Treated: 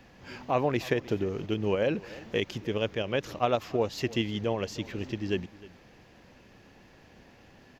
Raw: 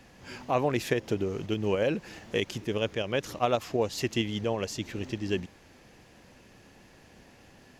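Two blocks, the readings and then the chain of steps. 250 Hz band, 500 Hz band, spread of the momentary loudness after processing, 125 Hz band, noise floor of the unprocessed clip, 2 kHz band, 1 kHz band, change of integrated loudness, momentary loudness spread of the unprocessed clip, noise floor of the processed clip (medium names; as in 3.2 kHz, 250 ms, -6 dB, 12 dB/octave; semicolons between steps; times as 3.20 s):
0.0 dB, 0.0 dB, 8 LU, 0.0 dB, -56 dBFS, -0.5 dB, 0.0 dB, 0.0 dB, 8 LU, -56 dBFS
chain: peaking EQ 9.3 kHz -14 dB 0.78 oct; on a send: delay 307 ms -20 dB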